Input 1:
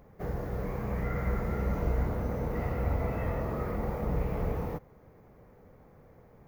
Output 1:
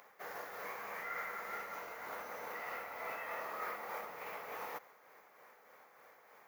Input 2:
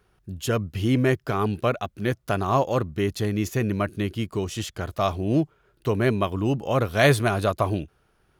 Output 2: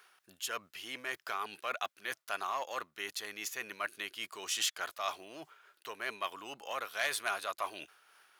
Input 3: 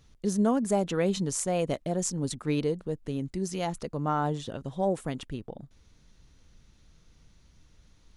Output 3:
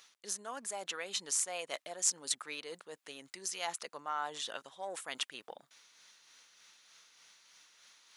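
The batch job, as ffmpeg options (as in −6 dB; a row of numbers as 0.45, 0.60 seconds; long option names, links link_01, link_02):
-af "acontrast=88,tremolo=f=3.3:d=0.36,areverse,acompressor=threshold=-28dB:ratio=6,areverse,highpass=1200,volume=2.5dB"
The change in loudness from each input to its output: −10.5, −13.0, −7.5 LU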